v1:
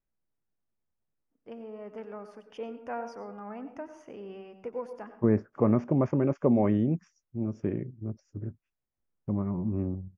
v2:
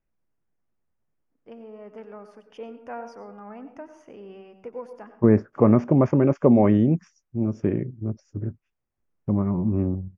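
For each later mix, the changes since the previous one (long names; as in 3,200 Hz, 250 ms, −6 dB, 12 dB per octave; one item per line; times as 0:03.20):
second voice +7.0 dB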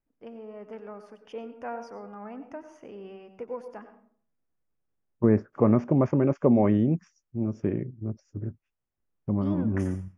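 first voice: entry −1.25 s
second voice −4.0 dB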